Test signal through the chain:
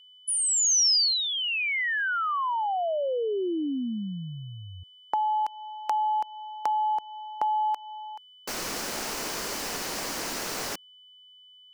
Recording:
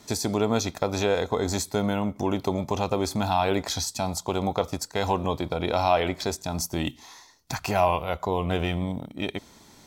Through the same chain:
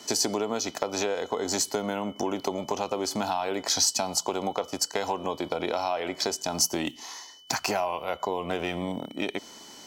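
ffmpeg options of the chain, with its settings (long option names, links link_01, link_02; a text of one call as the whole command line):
ffmpeg -i in.wav -filter_complex "[0:a]acrossover=split=220 4500:gain=0.126 1 0.0708[link_01][link_02][link_03];[link_01][link_02][link_03]amix=inputs=3:normalize=0,acompressor=threshold=-30dB:ratio=6,aexciter=amount=8.9:drive=2.8:freq=5000,aeval=exprs='val(0)+0.00158*sin(2*PI*3000*n/s)':channel_layout=same,volume=5dB" out.wav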